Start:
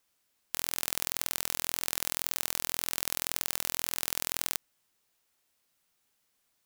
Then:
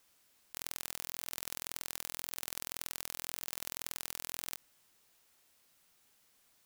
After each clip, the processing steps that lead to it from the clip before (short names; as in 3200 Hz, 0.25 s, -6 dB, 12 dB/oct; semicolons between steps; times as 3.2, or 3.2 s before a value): negative-ratio compressor -43 dBFS, ratio -1; gain -1.5 dB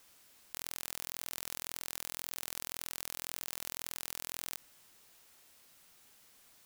limiter -19 dBFS, peak gain reduction 8.5 dB; gain +7 dB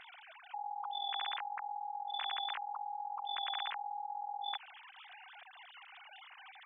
sine-wave speech; gain +2.5 dB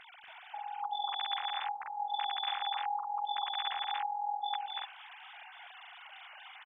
loudspeakers at several distances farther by 82 m -1 dB, 97 m -2 dB